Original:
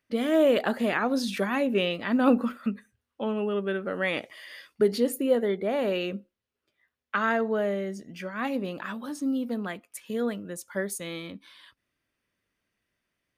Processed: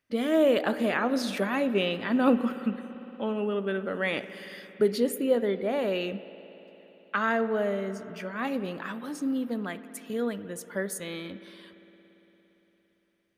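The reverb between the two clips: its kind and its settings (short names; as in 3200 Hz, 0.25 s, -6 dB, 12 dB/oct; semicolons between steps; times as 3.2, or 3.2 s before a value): spring tank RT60 4 s, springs 57 ms, chirp 75 ms, DRR 12.5 dB; gain -1 dB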